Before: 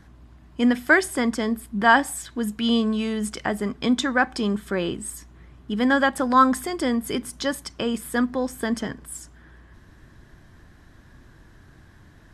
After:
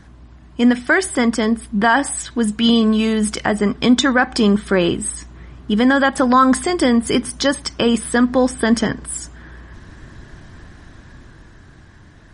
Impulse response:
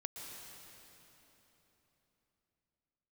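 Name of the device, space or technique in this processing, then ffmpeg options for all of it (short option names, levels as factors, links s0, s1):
low-bitrate web radio: -af "dynaudnorm=f=170:g=17:m=1.78,alimiter=limit=0.299:level=0:latency=1:release=115,volume=2.11" -ar 48000 -c:a libmp3lame -b:a 40k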